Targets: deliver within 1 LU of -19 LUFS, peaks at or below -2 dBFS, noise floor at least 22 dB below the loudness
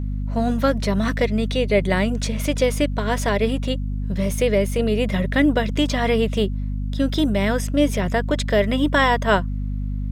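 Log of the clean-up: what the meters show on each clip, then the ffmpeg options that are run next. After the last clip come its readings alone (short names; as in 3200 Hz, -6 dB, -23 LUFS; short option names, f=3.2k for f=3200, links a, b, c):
hum 50 Hz; harmonics up to 250 Hz; hum level -22 dBFS; loudness -21.0 LUFS; peak -5.5 dBFS; loudness target -19.0 LUFS
-> -af "bandreject=f=50:t=h:w=6,bandreject=f=100:t=h:w=6,bandreject=f=150:t=h:w=6,bandreject=f=200:t=h:w=6,bandreject=f=250:t=h:w=6"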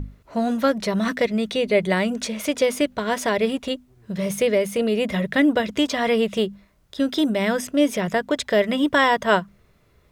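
hum none; loudness -22.0 LUFS; peak -5.5 dBFS; loudness target -19.0 LUFS
-> -af "volume=3dB"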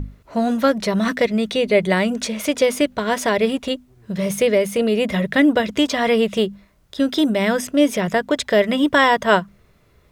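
loudness -19.0 LUFS; peak -2.5 dBFS; noise floor -56 dBFS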